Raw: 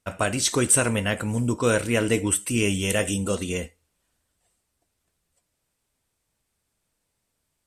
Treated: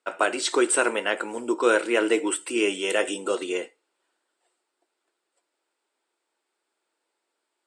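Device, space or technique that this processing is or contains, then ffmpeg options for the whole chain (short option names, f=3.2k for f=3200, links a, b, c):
phone speaker on a table: -af "highpass=f=340:w=0.5412,highpass=f=340:w=1.3066,equalizer=f=350:t=q:w=4:g=9,equalizer=f=880:t=q:w=4:g=5,equalizer=f=1.4k:t=q:w=4:g=5,equalizer=f=6.1k:t=q:w=4:g=-10,lowpass=f=7.9k:w=0.5412,lowpass=f=7.9k:w=1.3066"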